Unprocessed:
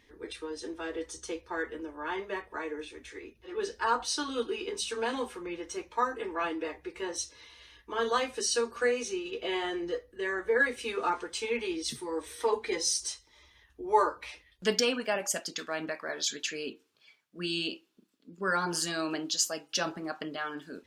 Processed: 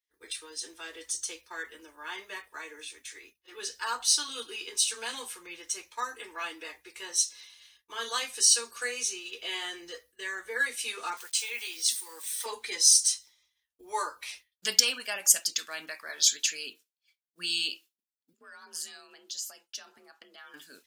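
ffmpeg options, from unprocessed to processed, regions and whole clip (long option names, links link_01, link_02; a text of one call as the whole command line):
ffmpeg -i in.wav -filter_complex "[0:a]asettb=1/sr,asplit=3[link_01][link_02][link_03];[link_01]atrim=end=11.174[link_04];[link_02]atrim=start=11.17:end=12.46,asetpts=PTS-STARTPTS,afade=type=in:duration=0.004:curve=qsin,afade=type=out:start_time=1.286:duration=0.004:curve=qsin,highpass=frequency=820:poles=1,aeval=exprs='val(0)*gte(abs(val(0)),0.00237)':channel_layout=same[link_05];[link_03]atrim=start=12.456[link_06];[link_04][link_05]acrossfade=duration=0.004:curve1=hsin:curve2=qsin[link_07];[link_07][link_06]acrossfade=duration=0.004:curve1=qsin:curve2=hsin,asettb=1/sr,asplit=3[link_08][link_09][link_10];[link_08]atrim=end=18.334[link_11];[link_09]atrim=start=18.33:end=20.54,asetpts=PTS-STARTPTS,afade=type=in:duration=0.004:curve=qsin,afade=type=out:start_time=2.206:duration=0.004:curve=qsin,highshelf=frequency=2900:gain=-8,acompressor=threshold=-41dB:ratio=12:attack=3.2:release=140:knee=1:detection=peak,afreqshift=48[link_12];[link_10]atrim=start=20.536[link_13];[link_11][link_12]acrossfade=duration=0.004:curve1=hsin:curve2=qsin[link_14];[link_14][link_13]acrossfade=duration=0.004:curve1=qsin:curve2=hsin,aemphasis=mode=production:type=75kf,agate=range=-33dB:threshold=-43dB:ratio=3:detection=peak,tiltshelf=frequency=890:gain=-8.5,volume=-8dB" out.wav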